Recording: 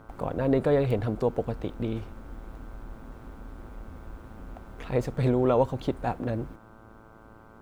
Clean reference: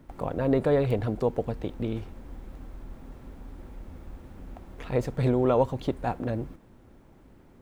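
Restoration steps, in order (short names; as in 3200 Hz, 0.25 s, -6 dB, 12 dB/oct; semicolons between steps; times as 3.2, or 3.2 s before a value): de-hum 110.5 Hz, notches 14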